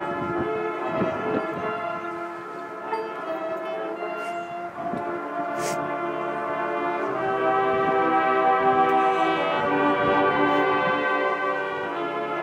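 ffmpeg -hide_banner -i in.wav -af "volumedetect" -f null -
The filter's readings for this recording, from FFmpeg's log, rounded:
mean_volume: -24.5 dB
max_volume: -8.9 dB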